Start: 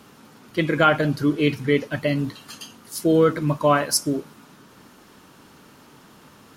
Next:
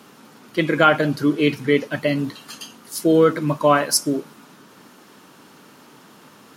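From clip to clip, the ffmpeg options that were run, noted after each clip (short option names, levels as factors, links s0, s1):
-af "highpass=160,volume=1.33"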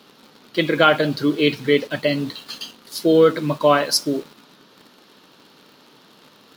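-filter_complex "[0:a]equalizer=f=500:t=o:w=1:g=4,equalizer=f=4000:t=o:w=1:g=12,equalizer=f=8000:t=o:w=1:g=-7,asplit=2[s0][s1];[s1]acrusher=bits=5:mix=0:aa=0.000001,volume=0.562[s2];[s0][s2]amix=inputs=2:normalize=0,volume=0.501"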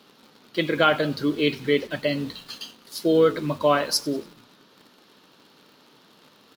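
-filter_complex "[0:a]asplit=4[s0][s1][s2][s3];[s1]adelay=95,afreqshift=-53,volume=0.075[s4];[s2]adelay=190,afreqshift=-106,volume=0.0351[s5];[s3]adelay=285,afreqshift=-159,volume=0.0166[s6];[s0][s4][s5][s6]amix=inputs=4:normalize=0,volume=0.596"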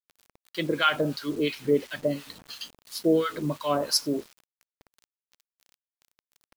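-filter_complex "[0:a]acrossover=split=940[s0][s1];[s0]aeval=exprs='val(0)*(1-1/2+1/2*cos(2*PI*2.9*n/s))':c=same[s2];[s1]aeval=exprs='val(0)*(1-1/2-1/2*cos(2*PI*2.9*n/s))':c=same[s3];[s2][s3]amix=inputs=2:normalize=0,acrusher=bits=7:mix=0:aa=0.000001"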